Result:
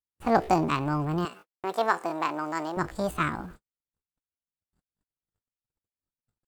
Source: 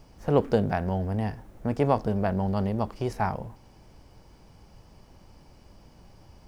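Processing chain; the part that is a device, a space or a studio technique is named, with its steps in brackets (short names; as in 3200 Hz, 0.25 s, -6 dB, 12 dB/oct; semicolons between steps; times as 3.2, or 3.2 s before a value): 1.25–2.78 HPF 280 Hz 12 dB/oct; chipmunk voice (pitch shift +8 st); gate -45 dBFS, range -56 dB; high shelf 4700 Hz +4.5 dB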